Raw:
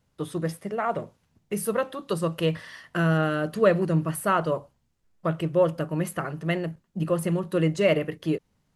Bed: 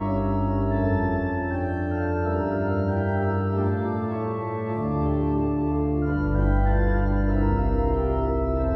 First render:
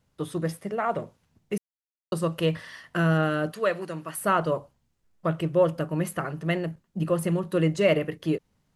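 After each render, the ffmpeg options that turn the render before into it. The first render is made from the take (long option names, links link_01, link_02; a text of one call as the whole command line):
ffmpeg -i in.wav -filter_complex "[0:a]asettb=1/sr,asplit=3[link_01][link_02][link_03];[link_01]atrim=end=3.524[link_04];[link_02]atrim=start=3.52:end=4.21,asetpts=PTS-STARTPTS,afade=type=in:duration=0.004:curve=qsin,afade=type=out:start_time=0.686:duration=0.004:curve=qsin,highpass=frequency=920:poles=1[link_05];[link_03]atrim=start=4.206[link_06];[link_04][link_05]acrossfade=duration=0.004:curve1=hsin:curve2=qsin[link_07];[link_07][link_06]acrossfade=duration=0.004:curve1=qsin:curve2=hsin,asplit=3[link_08][link_09][link_10];[link_08]atrim=end=1.58,asetpts=PTS-STARTPTS,afade=type=out:start_time=1.576:duration=0.004:curve=hsin[link_11];[link_09]atrim=start=1.58:end=2.12,asetpts=PTS-STARTPTS,volume=0[link_12];[link_10]atrim=start=2.12,asetpts=PTS-STARTPTS,afade=type=in:duration=0.004:curve=hsin[link_13];[link_11][link_12][link_13]concat=n=3:v=0:a=1" out.wav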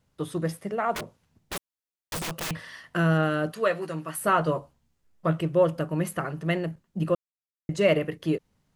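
ffmpeg -i in.wav -filter_complex "[0:a]asettb=1/sr,asplit=3[link_01][link_02][link_03];[link_01]atrim=end=0.924[link_04];[link_02]atrim=start=0.92:end=2.51,asetpts=PTS-STARTPTS,afade=type=in:duration=0.004:curve=qsin,afade=type=out:start_time=1.586:duration=0.004:curve=qsin,aeval=exprs='(mod(22.4*val(0)+1,2)-1)/22.4':channel_layout=same[link_05];[link_03]atrim=start=2.506[link_06];[link_04][link_05]acrossfade=duration=0.004:curve1=hsin:curve2=qsin[link_07];[link_07][link_06]acrossfade=duration=0.004:curve1=qsin:curve2=hsin,asettb=1/sr,asplit=3[link_08][link_09][link_10];[link_08]atrim=end=3.554[link_11];[link_09]atrim=start=3.55:end=5.38,asetpts=PTS-STARTPTS,afade=type=in:duration=0.004:curve=qsin,afade=type=out:start_time=1.826:duration=0.004:curve=qsin,asplit=2[link_12][link_13];[link_13]adelay=13,volume=-7.5dB[link_14];[link_12][link_14]amix=inputs=2:normalize=0,atrim=end_sample=80703[link_15];[link_10]atrim=start=5.376[link_16];[link_11][link_15]acrossfade=duration=0.004:curve1=hsin:curve2=qsin[link_17];[link_17][link_16]acrossfade=duration=0.004:curve1=qsin:curve2=hsin,asplit=3[link_18][link_19][link_20];[link_18]atrim=end=7.15,asetpts=PTS-STARTPTS,afade=type=out:start_time=7.146:duration=0.004:curve=hsin[link_21];[link_19]atrim=start=7.15:end=7.69,asetpts=PTS-STARTPTS,volume=0[link_22];[link_20]atrim=start=7.69,asetpts=PTS-STARTPTS,afade=type=in:duration=0.004:curve=hsin[link_23];[link_21][link_22][link_23]concat=n=3:v=0:a=1" out.wav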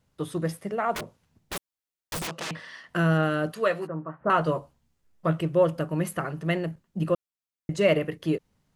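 ffmpeg -i in.wav -filter_complex "[0:a]asettb=1/sr,asplit=3[link_01][link_02][link_03];[link_01]atrim=end=2.274[link_04];[link_02]atrim=start=2.27:end=2.89,asetpts=PTS-STARTPTS,afade=type=in:duration=0.004:curve=qsin,afade=type=out:start_time=0.616:duration=0.004:curve=qsin,highpass=180,lowpass=6600[link_05];[link_03]atrim=start=2.886[link_06];[link_04][link_05]acrossfade=duration=0.004:curve1=hsin:curve2=qsin[link_07];[link_07][link_06]acrossfade=duration=0.004:curve1=qsin:curve2=hsin,asettb=1/sr,asplit=3[link_08][link_09][link_10];[link_08]atrim=end=3.874[link_11];[link_09]atrim=start=3.87:end=4.3,asetpts=PTS-STARTPTS,afade=type=in:duration=0.004:curve=qsin,afade=type=out:start_time=0.426:duration=0.004:curve=qsin,lowpass=frequency=1300:width=0.5412,lowpass=frequency=1300:width=1.3066[link_12];[link_10]atrim=start=4.296[link_13];[link_11][link_12]acrossfade=duration=0.004:curve1=hsin:curve2=qsin[link_14];[link_14][link_13]acrossfade=duration=0.004:curve1=qsin:curve2=hsin" out.wav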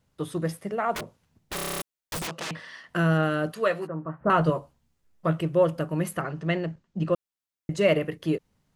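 ffmpeg -i in.wav -filter_complex "[0:a]asettb=1/sr,asplit=3[link_01][link_02][link_03];[link_01]atrim=end=4.054[link_04];[link_02]atrim=start=4.05:end=4.5,asetpts=PTS-STARTPTS,afade=type=in:duration=0.004:curve=qsin,afade=type=out:start_time=0.446:duration=0.004:curve=qsin,lowshelf=frequency=220:gain=9[link_05];[link_03]atrim=start=4.496[link_06];[link_04][link_05]acrossfade=duration=0.004:curve1=hsin:curve2=qsin[link_07];[link_07][link_06]acrossfade=duration=0.004:curve1=qsin:curve2=hsin,asettb=1/sr,asplit=3[link_08][link_09][link_10];[link_08]atrim=end=6.214[link_11];[link_09]atrim=start=6.21:end=7.13,asetpts=PTS-STARTPTS,afade=type=in:duration=0.004:curve=qsin,afade=type=out:start_time=0.916:duration=0.004:curve=qsin,lowpass=frequency=6900:width=0.5412,lowpass=frequency=6900:width=1.3066[link_12];[link_10]atrim=start=7.126[link_13];[link_11][link_12]acrossfade=duration=0.004:curve1=hsin:curve2=qsin[link_14];[link_14][link_13]acrossfade=duration=0.004:curve1=qsin:curve2=hsin,asplit=10[link_15][link_16][link_17][link_18][link_19][link_20][link_21][link_22][link_23][link_24];[link_15]atrim=end=1.582[link_25];[link_16]atrim=start=1.548:end=1.582[link_26];[link_17]atrim=start=1.548:end=1.582[link_27];[link_18]atrim=start=1.548:end=1.582[link_28];[link_19]atrim=start=1.548:end=1.582[link_29];[link_20]atrim=start=1.548:end=1.582[link_30];[link_21]atrim=start=1.548:end=1.582[link_31];[link_22]atrim=start=1.548:end=1.582[link_32];[link_23]atrim=start=1.548:end=1.582[link_33];[link_24]atrim=start=1.818[link_34];[link_25][link_26]acrossfade=duration=0.004:curve1=hsin:curve2=hsin[link_35];[link_35][link_27]acrossfade=duration=0.004:curve1=hsin:curve2=hsin[link_36];[link_36][link_28]acrossfade=duration=0.004:curve1=hsin:curve2=hsin[link_37];[link_37][link_29]acrossfade=duration=0.004:curve1=hsin:curve2=hsin[link_38];[link_38][link_30]acrossfade=duration=0.004:curve1=hsin:curve2=hsin[link_39];[link_39][link_31]acrossfade=duration=0.004:curve1=hsin:curve2=hsin[link_40];[link_40][link_32]acrossfade=duration=0.004:curve1=hsin:curve2=hsin[link_41];[link_41][link_33]acrossfade=duration=0.004:curve1=hsin:curve2=hsin[link_42];[link_42][link_34]acrossfade=duration=0.004:curve1=hsin:curve2=hsin" out.wav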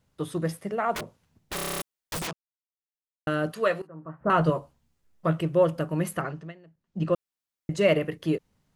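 ffmpeg -i in.wav -filter_complex "[0:a]asplit=6[link_01][link_02][link_03][link_04][link_05][link_06];[link_01]atrim=end=2.33,asetpts=PTS-STARTPTS,afade=type=out:start_time=2.326:duration=0.004:curve=hsin[link_07];[link_02]atrim=start=2.33:end=3.27,asetpts=PTS-STARTPTS,volume=0[link_08];[link_03]atrim=start=3.27:end=3.82,asetpts=PTS-STARTPTS,afade=type=in:duration=0.004:curve=hsin,afade=type=out:start_time=0.546:duration=0.004:curve=hsin:silence=0.0944061[link_09];[link_04]atrim=start=3.82:end=6.53,asetpts=PTS-STARTPTS,afade=type=in:duration=0.57:silence=0.0944061,afade=type=out:start_time=2.45:duration=0.26:silence=0.0668344[link_10];[link_05]atrim=start=6.53:end=6.77,asetpts=PTS-STARTPTS,volume=-23.5dB[link_11];[link_06]atrim=start=6.77,asetpts=PTS-STARTPTS,afade=type=in:duration=0.26:silence=0.0668344[link_12];[link_07][link_08][link_09][link_10][link_11][link_12]concat=n=6:v=0:a=1" out.wav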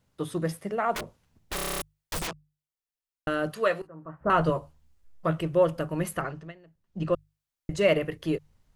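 ffmpeg -i in.wav -af "asubboost=boost=5:cutoff=73,bandreject=frequency=50:width_type=h:width=6,bandreject=frequency=100:width_type=h:width=6,bandreject=frequency=150:width_type=h:width=6" out.wav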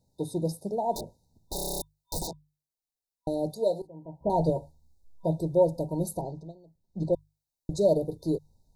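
ffmpeg -i in.wav -af "afftfilt=real='re*(1-between(b*sr/4096,970,3600))':imag='im*(1-between(b*sr/4096,970,3600))':win_size=4096:overlap=0.75" out.wav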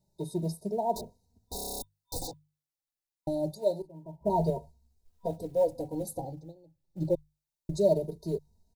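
ffmpeg -i in.wav -filter_complex "[0:a]acrusher=bits=9:mode=log:mix=0:aa=0.000001,asplit=2[link_01][link_02];[link_02]adelay=2.9,afreqshift=0.26[link_03];[link_01][link_03]amix=inputs=2:normalize=1" out.wav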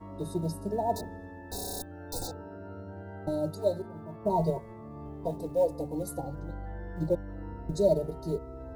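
ffmpeg -i in.wav -i bed.wav -filter_complex "[1:a]volume=-19dB[link_01];[0:a][link_01]amix=inputs=2:normalize=0" out.wav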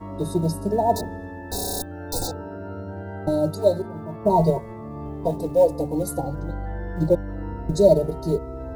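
ffmpeg -i in.wav -af "volume=9dB" out.wav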